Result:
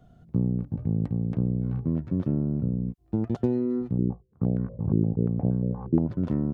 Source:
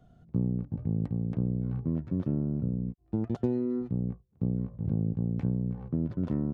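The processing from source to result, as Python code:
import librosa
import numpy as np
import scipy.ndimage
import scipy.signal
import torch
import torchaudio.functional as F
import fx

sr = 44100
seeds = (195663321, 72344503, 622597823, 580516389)

y = fx.filter_held_lowpass(x, sr, hz=8.5, low_hz=350.0, high_hz=1600.0, at=(3.98, 6.08))
y = y * 10.0 ** (3.5 / 20.0)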